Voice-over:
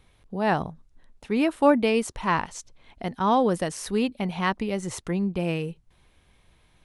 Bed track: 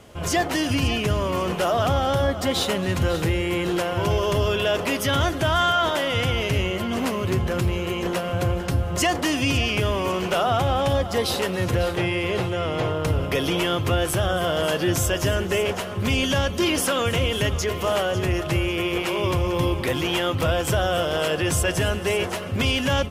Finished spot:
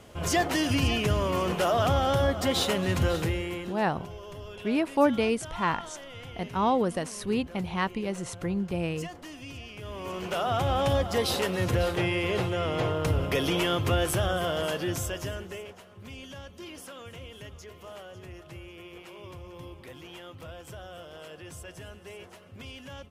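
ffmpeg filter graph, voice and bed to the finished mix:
ffmpeg -i stem1.wav -i stem2.wav -filter_complex "[0:a]adelay=3350,volume=-3.5dB[link_01];[1:a]volume=14dB,afade=type=out:start_time=3.04:duration=0.76:silence=0.133352,afade=type=in:start_time=9.78:duration=1.07:silence=0.141254,afade=type=out:start_time=14.06:duration=1.67:silence=0.125893[link_02];[link_01][link_02]amix=inputs=2:normalize=0" out.wav

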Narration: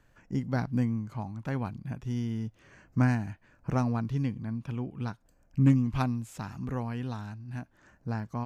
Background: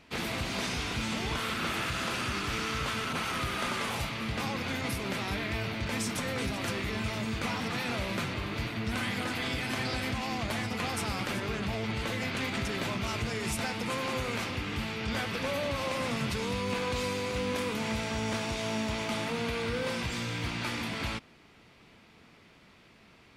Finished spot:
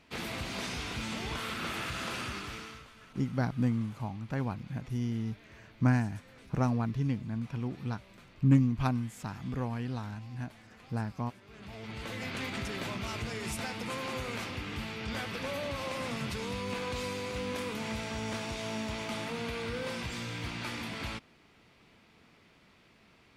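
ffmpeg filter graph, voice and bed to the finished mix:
ffmpeg -i stem1.wav -i stem2.wav -filter_complex "[0:a]adelay=2850,volume=-1dB[link_01];[1:a]volume=15dB,afade=type=out:start_time=2.19:duration=0.69:silence=0.112202,afade=type=in:start_time=11.46:duration=0.88:silence=0.112202[link_02];[link_01][link_02]amix=inputs=2:normalize=0" out.wav

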